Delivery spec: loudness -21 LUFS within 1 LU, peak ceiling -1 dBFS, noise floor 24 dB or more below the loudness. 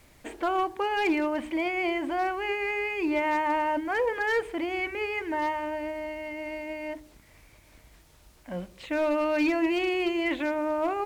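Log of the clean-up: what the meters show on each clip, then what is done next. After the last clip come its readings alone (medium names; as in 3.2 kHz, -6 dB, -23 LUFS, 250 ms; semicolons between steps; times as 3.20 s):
clipped samples 0.5%; clipping level -19.0 dBFS; loudness -28.5 LUFS; peak level -19.0 dBFS; loudness target -21.0 LUFS
-> clip repair -19 dBFS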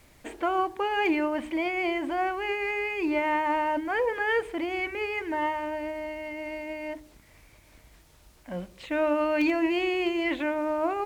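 clipped samples 0.0%; loudness -28.0 LUFS; peak level -14.0 dBFS; loudness target -21.0 LUFS
-> trim +7 dB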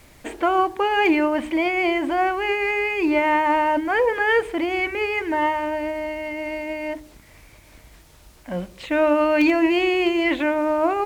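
loudness -21.0 LUFS; peak level -7.0 dBFS; noise floor -50 dBFS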